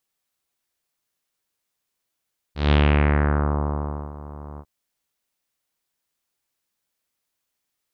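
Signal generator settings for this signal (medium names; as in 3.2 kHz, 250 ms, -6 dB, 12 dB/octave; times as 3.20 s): synth note saw D2 24 dB/octave, low-pass 1.1 kHz, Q 2, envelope 2 oct, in 1.02 s, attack 163 ms, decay 1.41 s, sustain -21 dB, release 0.06 s, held 2.04 s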